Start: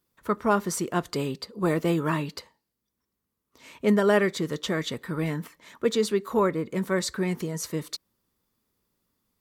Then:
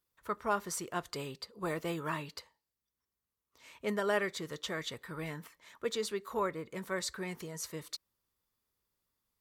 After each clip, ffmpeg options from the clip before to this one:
ffmpeg -i in.wav -af "equalizer=frequency=230:width=0.74:gain=-9.5,volume=-6.5dB" out.wav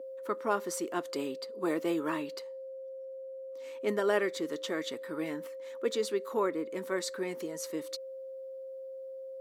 ffmpeg -i in.wav -af "aeval=exprs='val(0)+0.00708*sin(2*PI*530*n/s)':channel_layout=same,highpass=frequency=290:width_type=q:width=3.4" out.wav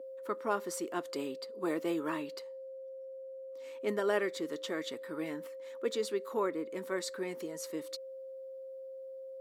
ffmpeg -i in.wav -af "bandreject=frequency=6100:width=26,volume=-2.5dB" out.wav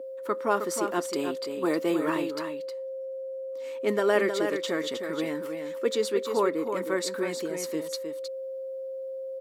ffmpeg -i in.wav -af "aecho=1:1:313:0.447,volume=7dB" out.wav

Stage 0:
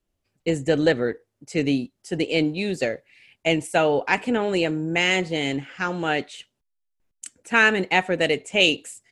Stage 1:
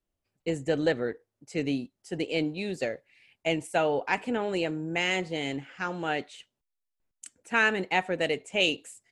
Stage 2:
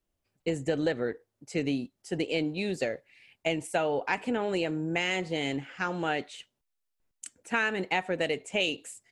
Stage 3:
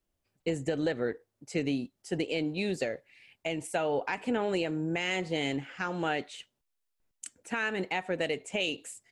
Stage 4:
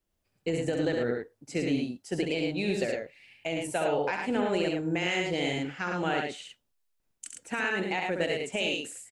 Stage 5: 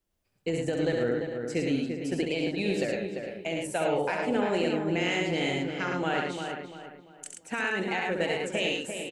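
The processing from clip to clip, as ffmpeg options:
ffmpeg -i in.wav -af "equalizer=frequency=820:width_type=o:width=1.5:gain=2.5,volume=-7.5dB" out.wav
ffmpeg -i in.wav -af "acompressor=threshold=-28dB:ratio=3,volume=2.5dB" out.wav
ffmpeg -i in.wav -af "alimiter=limit=-19dB:level=0:latency=1:release=190" out.wav
ffmpeg -i in.wav -af "aecho=1:1:67.06|107.9:0.562|0.631" out.wav
ffmpeg -i in.wav -filter_complex "[0:a]asplit=2[link_01][link_02];[link_02]adelay=344,lowpass=frequency=2300:poles=1,volume=-6dB,asplit=2[link_03][link_04];[link_04]adelay=344,lowpass=frequency=2300:poles=1,volume=0.37,asplit=2[link_05][link_06];[link_06]adelay=344,lowpass=frequency=2300:poles=1,volume=0.37,asplit=2[link_07][link_08];[link_08]adelay=344,lowpass=frequency=2300:poles=1,volume=0.37[link_09];[link_01][link_03][link_05][link_07][link_09]amix=inputs=5:normalize=0" out.wav

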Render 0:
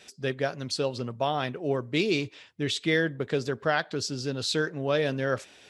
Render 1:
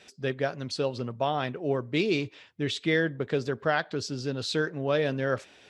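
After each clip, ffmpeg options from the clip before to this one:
ffmpeg -i in.wav -af "lowpass=frequency=4000:poles=1" out.wav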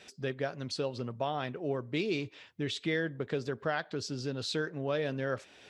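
ffmpeg -i in.wav -af "acompressor=threshold=-39dB:ratio=1.5" out.wav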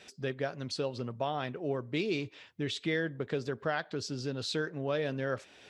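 ffmpeg -i in.wav -af anull out.wav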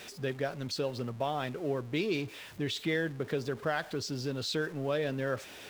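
ffmpeg -i in.wav -af "aeval=exprs='val(0)+0.5*0.00531*sgn(val(0))':channel_layout=same" out.wav

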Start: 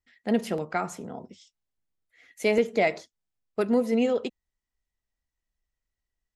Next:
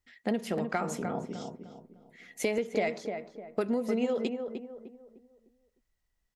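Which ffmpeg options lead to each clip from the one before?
ffmpeg -i in.wav -filter_complex "[0:a]acompressor=threshold=-31dB:ratio=6,asplit=2[link_01][link_02];[link_02]adelay=303,lowpass=frequency=1300:poles=1,volume=-5.5dB,asplit=2[link_03][link_04];[link_04]adelay=303,lowpass=frequency=1300:poles=1,volume=0.38,asplit=2[link_05][link_06];[link_06]adelay=303,lowpass=frequency=1300:poles=1,volume=0.38,asplit=2[link_07][link_08];[link_08]adelay=303,lowpass=frequency=1300:poles=1,volume=0.38,asplit=2[link_09][link_10];[link_10]adelay=303,lowpass=frequency=1300:poles=1,volume=0.38[link_11];[link_03][link_05][link_07][link_09][link_11]amix=inputs=5:normalize=0[link_12];[link_01][link_12]amix=inputs=2:normalize=0,volume=4dB" out.wav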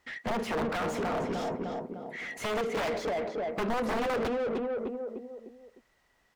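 ffmpeg -i in.wav -filter_complex "[0:a]aeval=exprs='(mod(15.8*val(0)+1,2)-1)/15.8':channel_layout=same,asplit=2[link_01][link_02];[link_02]highpass=frequency=720:poles=1,volume=31dB,asoftclip=type=tanh:threshold=-23.5dB[link_03];[link_01][link_03]amix=inputs=2:normalize=0,lowpass=frequency=1200:poles=1,volume=-6dB" out.wav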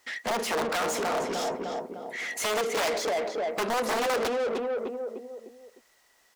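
ffmpeg -i in.wav -af "bass=frequency=250:gain=-13,treble=frequency=4000:gain=10,volume=4dB" out.wav

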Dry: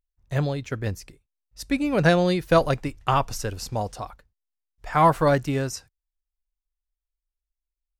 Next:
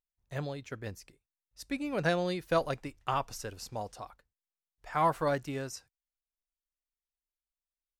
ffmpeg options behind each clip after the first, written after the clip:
ffmpeg -i in.wav -af "lowshelf=frequency=180:gain=-7.5,volume=-9dB" out.wav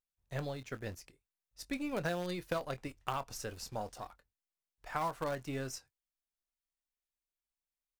ffmpeg -i in.wav -filter_complex "[0:a]asplit=2[link_01][link_02];[link_02]adelay=23,volume=-13dB[link_03];[link_01][link_03]amix=inputs=2:normalize=0,asplit=2[link_04][link_05];[link_05]acrusher=bits=5:dc=4:mix=0:aa=0.000001,volume=-8dB[link_06];[link_04][link_06]amix=inputs=2:normalize=0,acompressor=threshold=-29dB:ratio=6,volume=-3dB" out.wav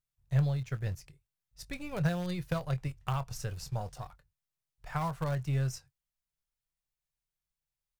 ffmpeg -i in.wav -af "lowshelf=frequency=190:width_type=q:width=3:gain=8.5" out.wav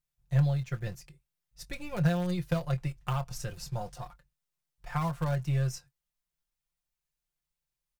ffmpeg -i in.wav -af "aecho=1:1:5.7:0.65" out.wav

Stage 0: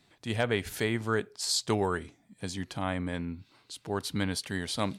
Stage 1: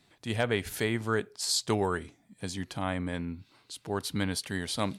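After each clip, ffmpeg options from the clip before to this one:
ffmpeg -i in.wav -af "equalizer=frequency=11000:width=1.8:gain=3" out.wav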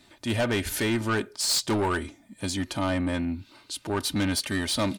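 ffmpeg -i in.wav -af "aecho=1:1:3.3:0.54,asoftclip=type=tanh:threshold=-28dB,volume=7.5dB" out.wav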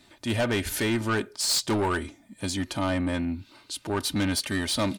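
ffmpeg -i in.wav -af anull out.wav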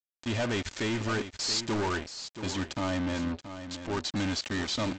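ffmpeg -i in.wav -af "aresample=16000,acrusher=bits=4:mix=0:aa=0.5,aresample=44100,aecho=1:1:678:0.282,volume=-4dB" out.wav

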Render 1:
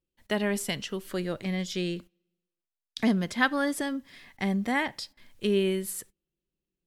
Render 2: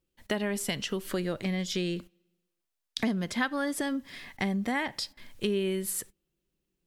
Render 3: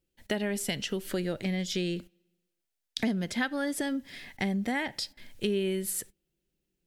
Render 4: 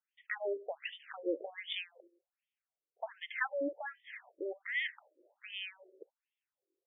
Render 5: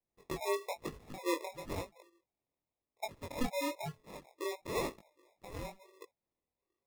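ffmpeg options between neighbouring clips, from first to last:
ffmpeg -i in.wav -af "acompressor=threshold=-35dB:ratio=3,volume=6dB" out.wav
ffmpeg -i in.wav -af "equalizer=frequency=1100:width_type=o:width=0.38:gain=-9.5" out.wav
ffmpeg -i in.wav -af "afftfilt=real='re*between(b*sr/1024,410*pow(2600/410,0.5+0.5*sin(2*PI*1.3*pts/sr))/1.41,410*pow(2600/410,0.5+0.5*sin(2*PI*1.3*pts/sr))*1.41)':imag='im*between(b*sr/1024,410*pow(2600/410,0.5+0.5*sin(2*PI*1.3*pts/sr))/1.41,410*pow(2600/410,0.5+0.5*sin(2*PI*1.3*pts/sr))*1.41)':win_size=1024:overlap=0.75,volume=1dB" out.wav
ffmpeg -i in.wav -af "acrusher=samples=29:mix=1:aa=0.000001,flanger=delay=19:depth=6.1:speed=1,volume=3.5dB" out.wav

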